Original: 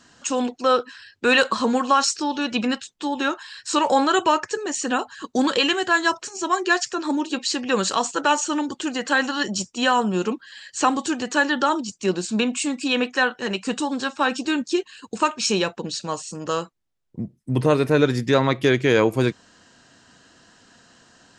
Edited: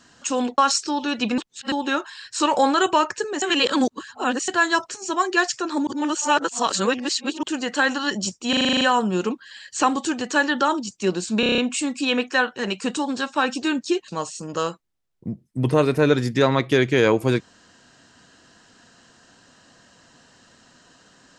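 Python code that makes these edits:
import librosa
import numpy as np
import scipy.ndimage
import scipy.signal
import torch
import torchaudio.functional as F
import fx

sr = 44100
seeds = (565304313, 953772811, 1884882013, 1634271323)

y = fx.edit(x, sr, fx.cut(start_s=0.58, length_s=1.33),
    fx.reverse_span(start_s=2.71, length_s=0.34),
    fx.reverse_span(start_s=4.75, length_s=1.06),
    fx.reverse_span(start_s=7.2, length_s=1.56),
    fx.stutter(start_s=9.82, slice_s=0.04, count=9),
    fx.stutter(start_s=12.41, slice_s=0.03, count=7),
    fx.cut(start_s=14.91, length_s=1.09), tone=tone)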